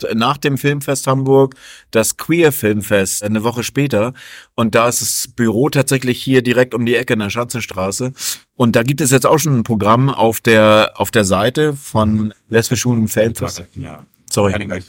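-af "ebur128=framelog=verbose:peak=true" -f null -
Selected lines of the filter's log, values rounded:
Integrated loudness:
  I:         -14.8 LUFS
  Threshold: -25.1 LUFS
Loudness range:
  LRA:         3.4 LU
  Threshold: -34.8 LUFS
  LRA low:   -16.2 LUFS
  LRA high:  -12.8 LUFS
True peak:
  Peak:       -1.0 dBFS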